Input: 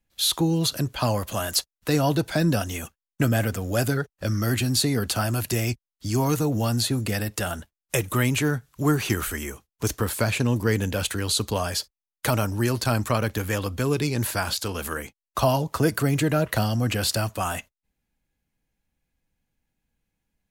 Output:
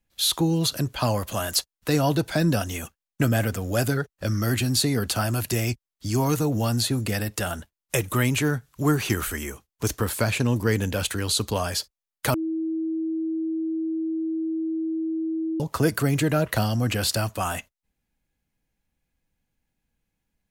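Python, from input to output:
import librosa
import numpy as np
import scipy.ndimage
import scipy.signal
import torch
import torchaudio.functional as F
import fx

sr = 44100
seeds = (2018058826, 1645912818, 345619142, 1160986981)

y = fx.edit(x, sr, fx.bleep(start_s=12.34, length_s=3.26, hz=322.0, db=-24.0), tone=tone)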